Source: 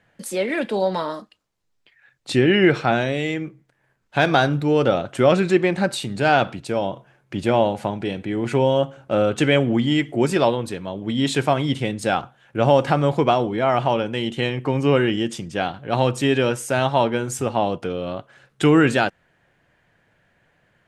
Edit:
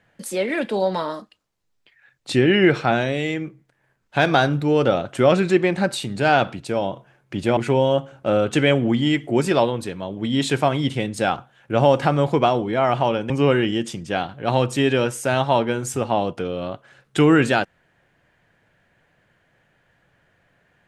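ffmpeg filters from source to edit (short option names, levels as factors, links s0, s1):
-filter_complex "[0:a]asplit=3[s0][s1][s2];[s0]atrim=end=7.572[s3];[s1]atrim=start=8.418:end=14.152[s4];[s2]atrim=start=14.748[s5];[s3][s4]acrossfade=d=0.004:c1=hsin:c2=hsin[s6];[s6][s5]acrossfade=d=0.004:c1=hsin:c2=hsin"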